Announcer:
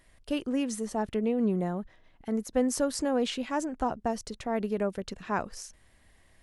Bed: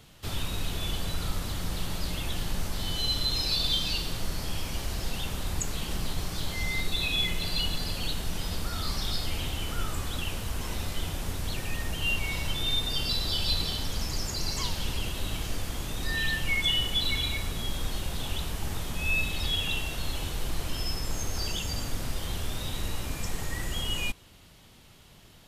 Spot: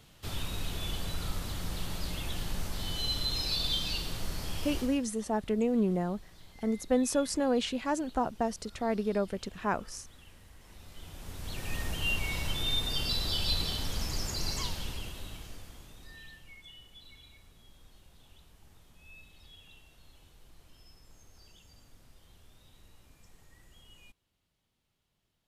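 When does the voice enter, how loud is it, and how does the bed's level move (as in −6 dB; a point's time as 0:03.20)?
4.35 s, −0.5 dB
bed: 0:04.80 −4 dB
0:05.07 −23 dB
0:10.59 −23 dB
0:11.75 −2.5 dB
0:14.52 −2.5 dB
0:16.63 −26 dB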